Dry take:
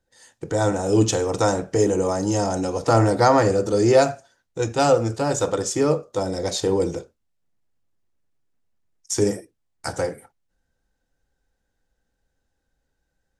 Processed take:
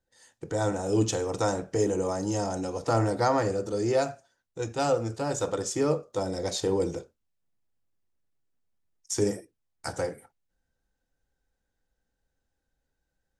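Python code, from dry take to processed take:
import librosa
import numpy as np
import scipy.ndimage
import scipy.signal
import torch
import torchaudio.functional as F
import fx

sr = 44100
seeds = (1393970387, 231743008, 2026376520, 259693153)

y = fx.rider(x, sr, range_db=3, speed_s=2.0)
y = y * 10.0 ** (-7.0 / 20.0)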